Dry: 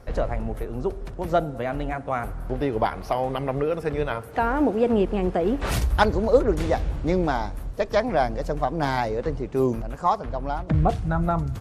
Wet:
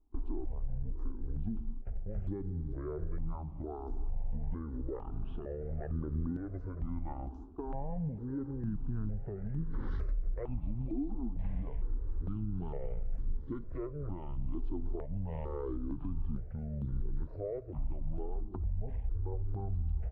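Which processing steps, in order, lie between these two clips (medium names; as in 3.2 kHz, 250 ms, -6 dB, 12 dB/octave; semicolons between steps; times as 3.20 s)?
gate with hold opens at -24 dBFS; bass shelf 150 Hz +8 dB; compression, threshold -22 dBFS, peak gain reduction 11.5 dB; peak limiter -20 dBFS, peak gain reduction 8 dB; tape spacing loss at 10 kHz 25 dB; tape echo 411 ms, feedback 62%, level -17.5 dB, low-pass 2.6 kHz; speed mistake 78 rpm record played at 45 rpm; stepped phaser 2.2 Hz 540–2500 Hz; trim -5 dB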